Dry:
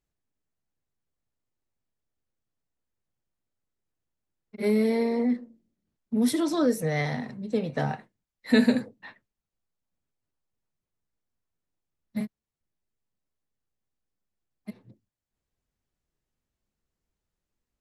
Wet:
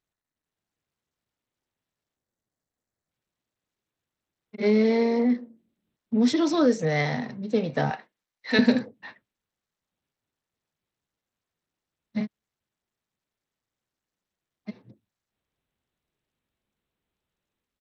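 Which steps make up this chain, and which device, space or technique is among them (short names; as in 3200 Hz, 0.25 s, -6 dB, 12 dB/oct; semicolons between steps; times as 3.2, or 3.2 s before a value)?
2.17–3.1 spectral delete 820–4900 Hz; 7.9–8.59 weighting filter A; Bluetooth headset (HPF 120 Hz 6 dB/oct; AGC gain up to 6 dB; downsampling 16000 Hz; gain -2.5 dB; SBC 64 kbps 32000 Hz)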